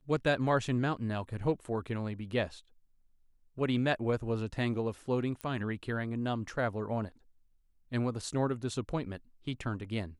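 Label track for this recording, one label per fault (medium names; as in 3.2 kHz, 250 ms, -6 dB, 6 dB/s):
5.410000	5.410000	pop -25 dBFS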